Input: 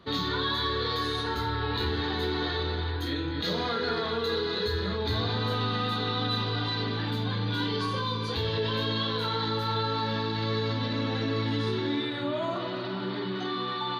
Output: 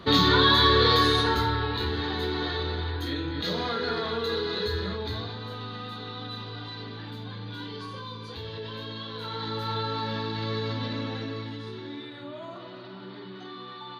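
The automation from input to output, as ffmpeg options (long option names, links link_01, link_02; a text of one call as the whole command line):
ffmpeg -i in.wav -af "volume=16.5dB,afade=type=out:start_time=0.94:duration=0.79:silence=0.334965,afade=type=out:start_time=4.76:duration=0.6:silence=0.375837,afade=type=in:start_time=9.09:duration=0.61:silence=0.446684,afade=type=out:start_time=10.87:duration=0.71:silence=0.398107" out.wav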